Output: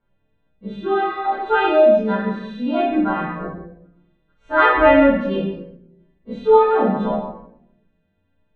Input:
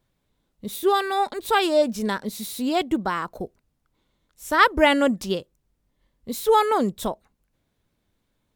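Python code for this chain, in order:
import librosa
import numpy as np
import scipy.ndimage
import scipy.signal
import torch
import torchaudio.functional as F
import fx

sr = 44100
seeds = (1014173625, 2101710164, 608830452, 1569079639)

y = fx.freq_snap(x, sr, grid_st=2)
y = scipy.signal.sosfilt(scipy.signal.butter(4, 2100.0, 'lowpass', fs=sr, output='sos'), y)
y = y + 10.0 ** (-10.0 / 20.0) * np.pad(y, (int(121 * sr / 1000.0), 0))[:len(y)]
y = fx.room_shoebox(y, sr, seeds[0], volume_m3=170.0, walls='mixed', distance_m=1.7)
y = fx.chorus_voices(y, sr, voices=2, hz=0.42, base_ms=29, depth_ms=4.9, mix_pct=30)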